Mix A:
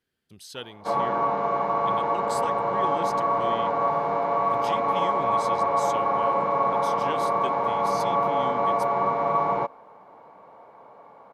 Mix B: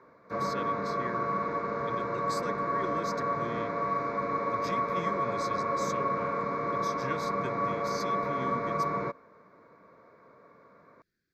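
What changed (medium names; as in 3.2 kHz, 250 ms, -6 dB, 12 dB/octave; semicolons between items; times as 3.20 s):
background: entry -0.55 s; master: add static phaser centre 3 kHz, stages 6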